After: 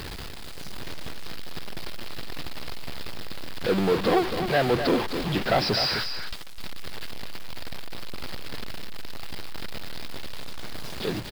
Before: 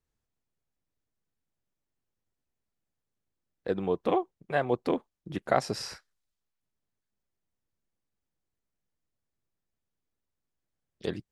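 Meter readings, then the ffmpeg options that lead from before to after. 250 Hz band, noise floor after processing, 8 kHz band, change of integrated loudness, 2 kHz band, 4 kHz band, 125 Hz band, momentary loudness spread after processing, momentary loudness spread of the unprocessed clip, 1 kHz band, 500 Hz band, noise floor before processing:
+7.0 dB, -34 dBFS, +7.5 dB, +2.5 dB, +10.0 dB, +16.0 dB, +9.5 dB, 17 LU, 12 LU, +5.0 dB, +5.5 dB, under -85 dBFS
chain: -filter_complex "[0:a]aeval=exprs='val(0)+0.5*0.0398*sgn(val(0))':c=same,highshelf=f=3.6k:g=7.5,dynaudnorm=f=190:g=9:m=5dB,aresample=11025,asoftclip=type=tanh:threshold=-15dB,aresample=44100,acrusher=bits=6:mix=0:aa=0.000001,asplit=2[a][b];[b]aecho=0:1:256:0.376[c];[a][c]amix=inputs=2:normalize=0"

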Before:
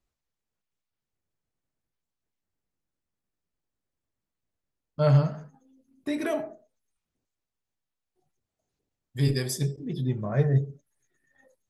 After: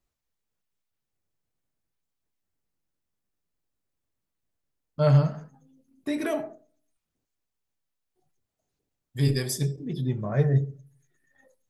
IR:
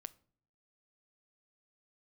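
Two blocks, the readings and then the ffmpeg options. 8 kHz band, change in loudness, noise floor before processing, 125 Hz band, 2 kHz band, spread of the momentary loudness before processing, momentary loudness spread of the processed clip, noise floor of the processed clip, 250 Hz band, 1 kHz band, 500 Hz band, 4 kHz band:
+1.5 dB, +0.5 dB, under -85 dBFS, +1.0 dB, +0.5 dB, 19 LU, 20 LU, -84 dBFS, +1.0 dB, +0.5 dB, +0.5 dB, +0.5 dB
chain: -filter_complex "[0:a]asplit=2[a][b];[1:a]atrim=start_sample=2205,highshelf=f=9.1k:g=6[c];[b][c]afir=irnorm=-1:irlink=0,volume=5dB[d];[a][d]amix=inputs=2:normalize=0,volume=-5.5dB"

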